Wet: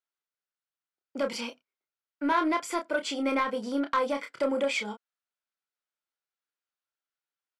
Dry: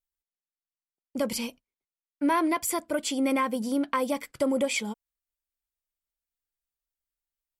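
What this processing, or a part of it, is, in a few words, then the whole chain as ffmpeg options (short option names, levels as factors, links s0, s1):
intercom: -filter_complex "[0:a]highpass=320,lowpass=4800,equalizer=f=1400:t=o:w=0.36:g=8,asoftclip=type=tanh:threshold=0.119,asplit=2[s0][s1];[s1]adelay=29,volume=0.501[s2];[s0][s2]amix=inputs=2:normalize=0"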